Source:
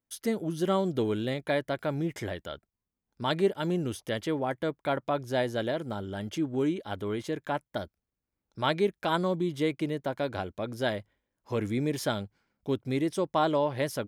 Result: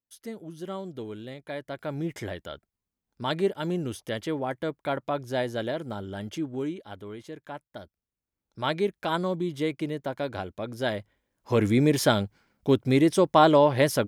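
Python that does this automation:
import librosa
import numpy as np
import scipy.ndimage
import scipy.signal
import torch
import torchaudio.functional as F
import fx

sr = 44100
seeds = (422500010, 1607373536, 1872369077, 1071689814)

y = fx.gain(x, sr, db=fx.line((1.45, -9.0), (2.06, 0.0), (6.26, 0.0), (7.13, -8.0), (7.76, -8.0), (8.74, 0.0), (10.75, 0.0), (11.64, 8.0)))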